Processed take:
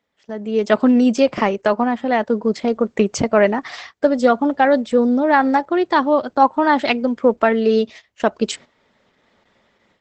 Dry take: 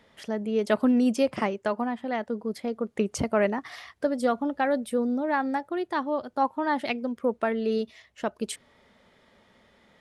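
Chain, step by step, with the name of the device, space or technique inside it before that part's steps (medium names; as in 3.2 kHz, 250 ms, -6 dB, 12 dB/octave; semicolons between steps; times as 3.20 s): video call (high-pass 140 Hz 6 dB/octave; level rider gain up to 15 dB; gate -34 dBFS, range -13 dB; Opus 12 kbps 48 kHz)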